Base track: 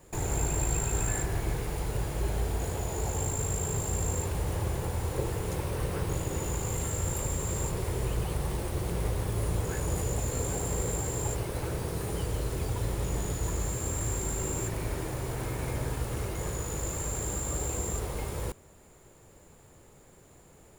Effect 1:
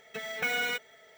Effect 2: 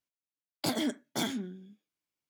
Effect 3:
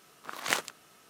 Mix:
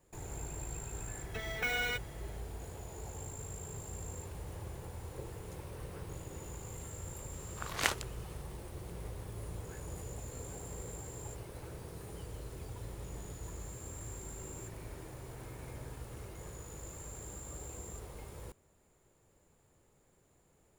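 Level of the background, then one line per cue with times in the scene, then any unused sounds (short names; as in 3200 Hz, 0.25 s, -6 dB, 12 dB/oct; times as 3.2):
base track -13.5 dB
1.2 add 1 -4 dB
7.33 add 3 -2.5 dB
not used: 2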